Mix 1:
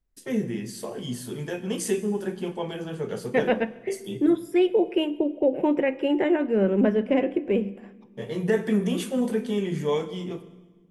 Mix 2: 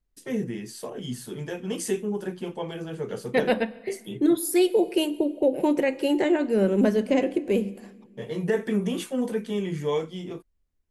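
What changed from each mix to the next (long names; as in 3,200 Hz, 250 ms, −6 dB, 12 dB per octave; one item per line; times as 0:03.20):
first voice: send off
second voice: remove Savitzky-Golay smoothing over 25 samples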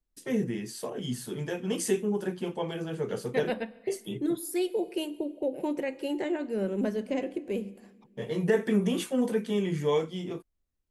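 second voice −8.5 dB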